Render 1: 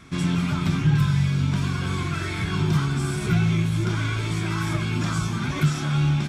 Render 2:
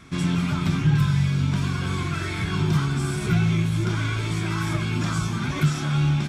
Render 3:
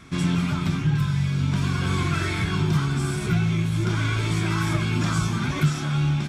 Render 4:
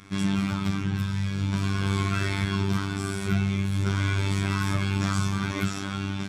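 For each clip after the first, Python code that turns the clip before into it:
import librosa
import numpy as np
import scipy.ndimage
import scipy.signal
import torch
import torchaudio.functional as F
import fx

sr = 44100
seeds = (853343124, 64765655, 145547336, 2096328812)

y1 = x
y2 = fx.rider(y1, sr, range_db=10, speed_s=0.5)
y3 = fx.robotise(y2, sr, hz=97.9)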